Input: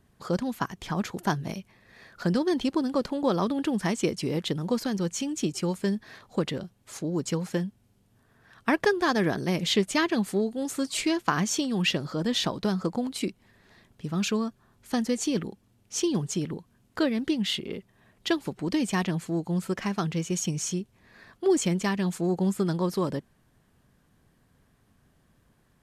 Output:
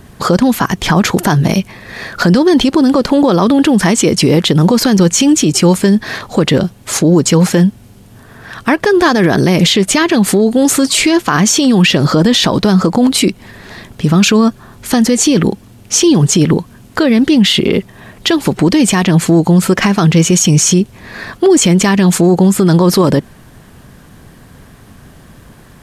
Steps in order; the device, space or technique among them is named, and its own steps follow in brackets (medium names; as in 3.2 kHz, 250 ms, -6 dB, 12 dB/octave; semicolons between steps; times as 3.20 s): loud club master (compression 2:1, threshold -27 dBFS, peak gain reduction 6 dB; hard clipper -15.5 dBFS, distortion -41 dB; loudness maximiser +26.5 dB); trim -1 dB